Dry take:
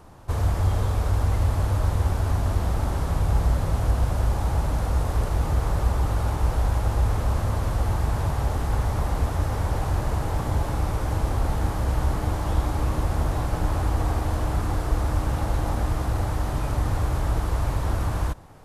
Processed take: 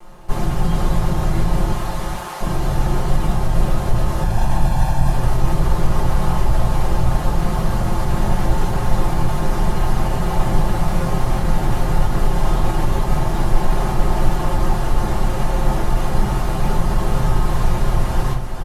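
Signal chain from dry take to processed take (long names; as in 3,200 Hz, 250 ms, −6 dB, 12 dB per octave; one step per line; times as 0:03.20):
lower of the sound and its delayed copy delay 5.6 ms
0:01.72–0:02.41: high-pass filter 700 Hz 12 dB per octave
0:04.22–0:05.10: comb filter 1.2 ms, depth 77%
brickwall limiter −18 dBFS, peak gain reduction 7.5 dB
single-tap delay 431 ms −6.5 dB
convolution reverb RT60 0.30 s, pre-delay 3 ms, DRR −3 dB
level +1.5 dB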